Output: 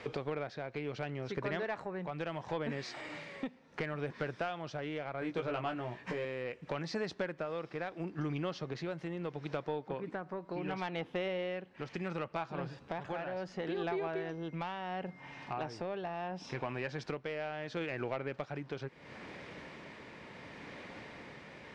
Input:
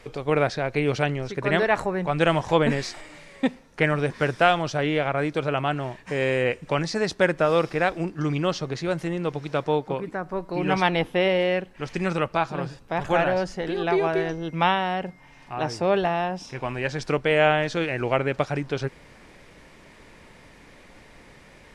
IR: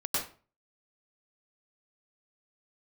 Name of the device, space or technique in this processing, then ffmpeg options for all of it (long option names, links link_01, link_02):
AM radio: -filter_complex "[0:a]highpass=110,lowpass=4300,acompressor=threshold=-37dB:ratio=5,asoftclip=type=tanh:threshold=-27dB,tremolo=f=0.72:d=0.32,asettb=1/sr,asplit=3[link_01][link_02][link_03];[link_01]atrim=end=5.204[link_04];[link_02]atrim=start=5.2:end=6.25,asetpts=PTS-STARTPTS,afade=type=in:duration=0.004:curve=qsin,afade=type=out:start_time=1.046:duration=0.004:curve=qsin,asplit=2[link_05][link_06];[link_06]adelay=17,volume=-4dB[link_07];[link_05][link_07]amix=inputs=2:normalize=0,atrim=end_sample=46305[link_08];[link_03]atrim=start=6.246[link_09];[link_04][link_08]acrossfade=duration=0.004:curve1=hsin:curve2=qsin[link_10];[link_10][link_09]acrossfade=duration=0.004:curve1=qsin:curve2=hsin,volume=3dB"